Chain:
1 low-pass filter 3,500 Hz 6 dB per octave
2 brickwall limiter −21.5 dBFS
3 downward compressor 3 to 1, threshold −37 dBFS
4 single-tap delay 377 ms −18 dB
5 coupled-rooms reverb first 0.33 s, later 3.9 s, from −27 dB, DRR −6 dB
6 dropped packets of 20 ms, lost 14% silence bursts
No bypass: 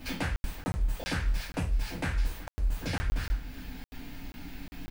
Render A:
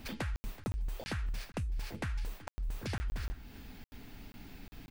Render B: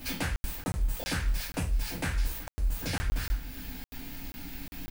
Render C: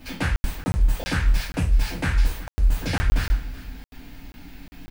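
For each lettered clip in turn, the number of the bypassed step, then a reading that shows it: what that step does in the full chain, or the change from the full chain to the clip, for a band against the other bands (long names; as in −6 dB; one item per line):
5, change in crest factor +2.5 dB
1, change in momentary loudness spread −3 LU
3, average gain reduction 5.0 dB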